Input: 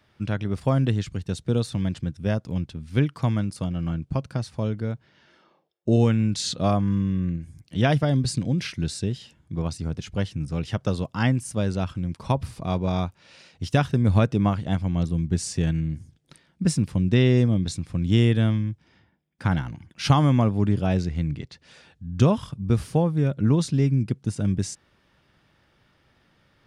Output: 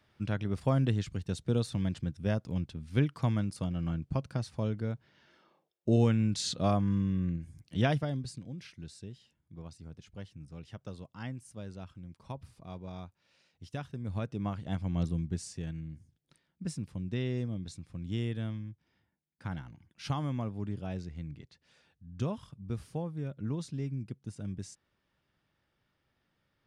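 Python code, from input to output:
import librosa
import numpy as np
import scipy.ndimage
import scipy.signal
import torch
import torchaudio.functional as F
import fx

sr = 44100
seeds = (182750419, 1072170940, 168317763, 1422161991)

y = fx.gain(x, sr, db=fx.line((7.81, -6.0), (8.4, -18.5), (13.99, -18.5), (15.06, -6.0), (15.58, -15.0)))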